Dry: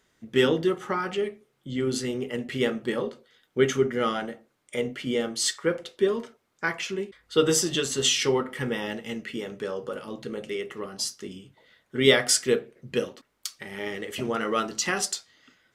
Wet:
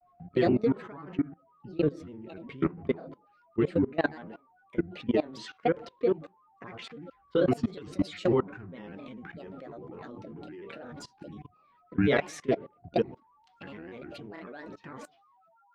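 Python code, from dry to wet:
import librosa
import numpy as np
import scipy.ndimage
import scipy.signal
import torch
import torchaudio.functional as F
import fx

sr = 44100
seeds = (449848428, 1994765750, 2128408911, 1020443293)

y = fx.fade_out_tail(x, sr, length_s=1.71)
y = scipy.signal.sosfilt(scipy.signal.butter(2, 2600.0, 'lowpass', fs=sr, output='sos'), y)
y = fx.low_shelf(y, sr, hz=490.0, db=9.0)
y = y + 10.0 ** (-46.0 / 20.0) * np.sin(2.0 * np.pi * 990.0 * np.arange(len(y)) / sr)
y = fx.granulator(y, sr, seeds[0], grain_ms=100.0, per_s=20.0, spray_ms=21.0, spread_st=7)
y = fx.level_steps(y, sr, step_db=21)
y = y * 10.0 ** (-1.5 / 20.0)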